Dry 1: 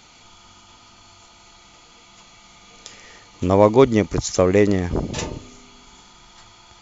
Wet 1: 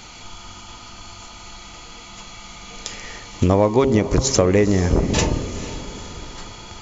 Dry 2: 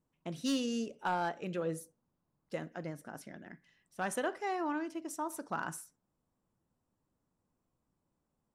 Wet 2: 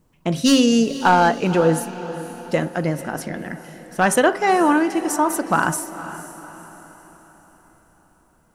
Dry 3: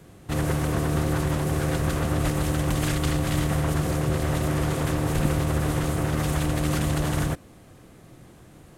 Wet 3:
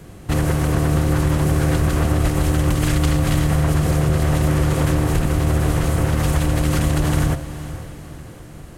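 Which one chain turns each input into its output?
low-shelf EQ 64 Hz +8.5 dB
notch filter 3,600 Hz, Q 29
hum removal 134.2 Hz, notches 11
downward compressor 5 to 1, threshold −22 dBFS
feedback delay with all-pass diffusion 490 ms, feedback 46%, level −13.5 dB
loudness normalisation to −19 LKFS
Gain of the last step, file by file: +9.0, +18.5, +7.5 decibels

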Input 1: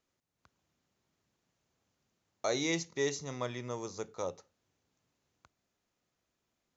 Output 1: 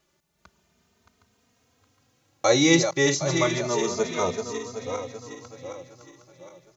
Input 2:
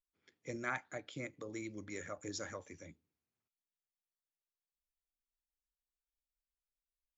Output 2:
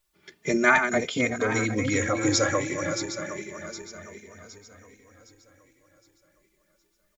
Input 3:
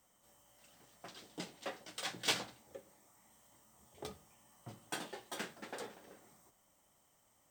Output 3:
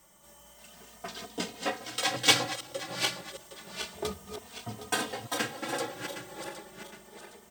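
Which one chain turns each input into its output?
feedback delay that plays each chunk backwards 382 ms, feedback 63%, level −7.5 dB
barber-pole flanger 3 ms +0.3 Hz
normalise the peak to −6 dBFS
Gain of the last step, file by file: +16.0, +22.5, +14.5 decibels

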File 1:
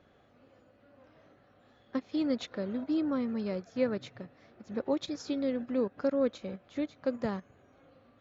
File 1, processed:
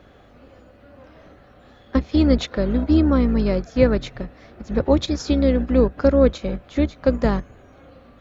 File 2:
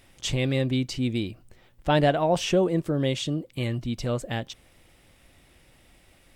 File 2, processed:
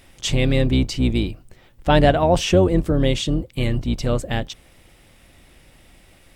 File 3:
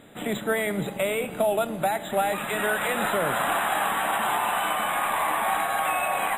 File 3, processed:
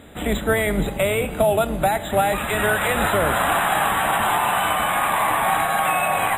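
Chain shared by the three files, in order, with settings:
sub-octave generator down 2 octaves, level −1 dB
loudness normalisation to −20 LKFS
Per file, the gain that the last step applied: +12.5, +5.5, +5.0 decibels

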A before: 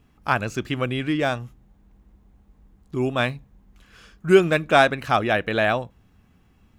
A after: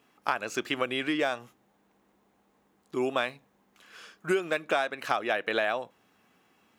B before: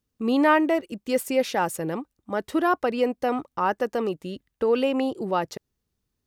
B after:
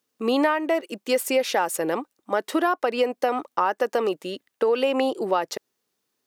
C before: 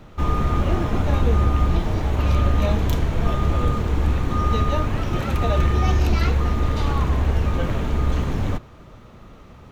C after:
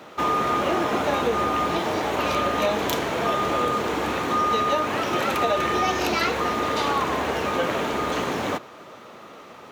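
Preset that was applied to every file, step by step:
high-pass filter 390 Hz 12 dB per octave
downward compressor 10 to 1, threshold −25 dBFS
normalise the peak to −9 dBFS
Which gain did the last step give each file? +1.5, +7.5, +7.5 decibels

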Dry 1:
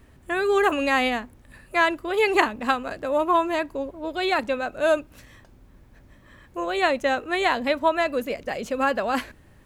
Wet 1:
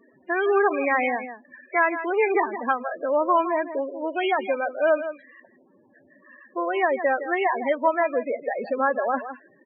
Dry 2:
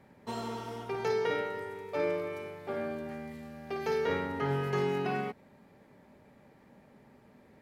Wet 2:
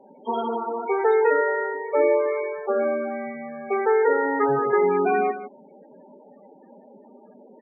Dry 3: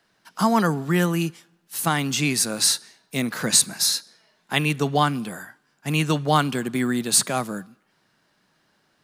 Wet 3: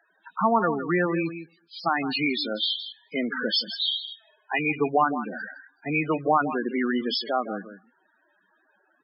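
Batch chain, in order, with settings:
hearing-aid frequency compression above 2,000 Hz 1.5 to 1
high-pass filter 310 Hz 12 dB per octave
in parallel at +2 dB: downward compressor 5 to 1, threshold −31 dBFS
on the sum: hard clipping −9.5 dBFS
on a send: single-tap delay 162 ms −11 dB
on the sum: downsampling to 11,025 Hz
spectral peaks only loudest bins 16
normalise the peak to −9 dBFS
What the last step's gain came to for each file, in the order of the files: −2.0, +7.0, −1.5 decibels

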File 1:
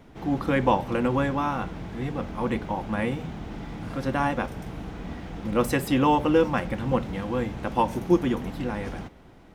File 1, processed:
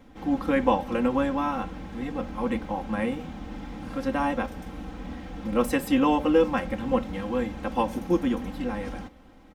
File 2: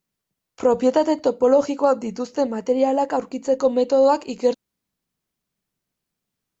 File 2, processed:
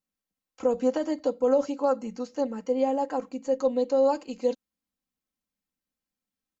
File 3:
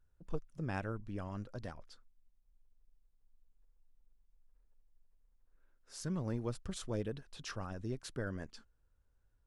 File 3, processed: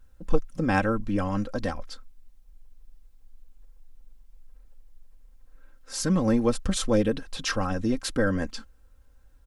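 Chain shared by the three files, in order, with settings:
comb filter 3.8 ms, depth 70%
loudness normalisation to −27 LKFS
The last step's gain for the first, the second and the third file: −3.0, −10.5, +14.5 decibels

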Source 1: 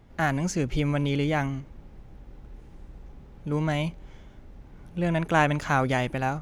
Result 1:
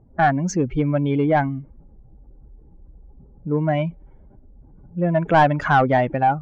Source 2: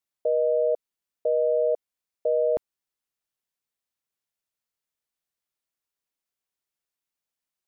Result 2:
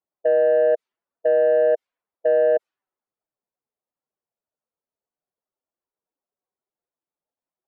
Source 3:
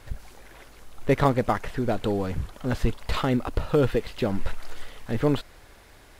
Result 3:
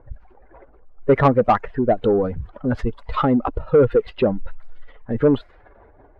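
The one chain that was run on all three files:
expanding power law on the bin magnitudes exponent 1.8
low-pass that shuts in the quiet parts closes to 660 Hz, open at −22.5 dBFS
mid-hump overdrive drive 17 dB, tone 1,800 Hz, clips at −8 dBFS
loudness normalisation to −20 LKFS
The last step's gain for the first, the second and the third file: +4.0, +0.5, +4.5 decibels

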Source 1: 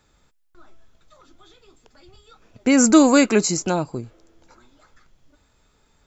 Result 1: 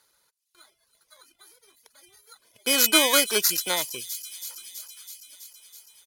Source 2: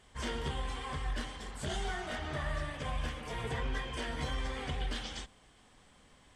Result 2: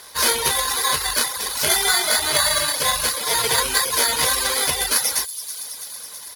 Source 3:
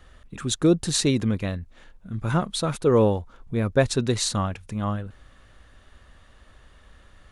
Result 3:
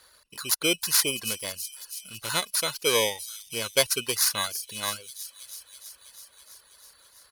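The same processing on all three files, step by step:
samples in bit-reversed order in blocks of 16 samples
resonant band-pass 4,700 Hz, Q 0.53
comb filter 2 ms, depth 32%
on a send: delay with a high-pass on its return 327 ms, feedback 72%, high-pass 4,800 Hz, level −10 dB
on the sum: reverb reduction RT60 0.59 s
normalise the peak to −1.5 dBFS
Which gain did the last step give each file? +6.0, +29.0, +7.5 decibels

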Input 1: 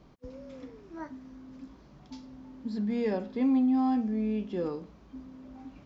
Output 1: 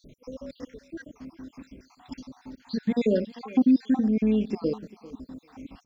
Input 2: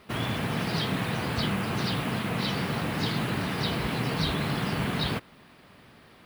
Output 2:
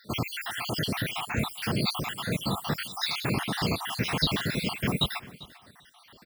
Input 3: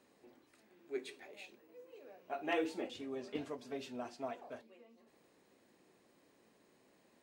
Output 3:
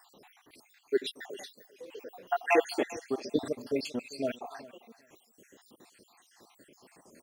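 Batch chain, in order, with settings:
time-frequency cells dropped at random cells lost 68%
high-shelf EQ 3,500 Hz +8 dB
repeating echo 395 ms, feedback 16%, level −19.5 dB
normalise the peak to −12 dBFS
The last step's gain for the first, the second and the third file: +8.0, +2.5, +13.0 decibels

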